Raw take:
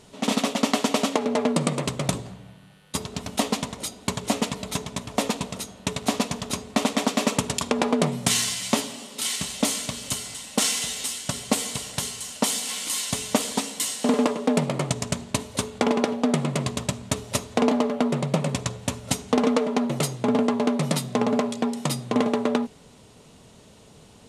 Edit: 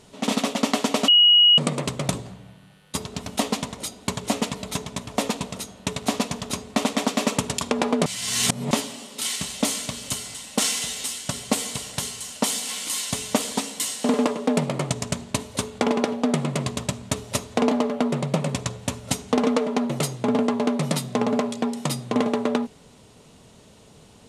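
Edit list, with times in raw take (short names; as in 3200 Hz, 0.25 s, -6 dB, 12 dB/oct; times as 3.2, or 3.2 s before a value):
1.08–1.58 bleep 2900 Hz -11 dBFS
8.06–8.71 reverse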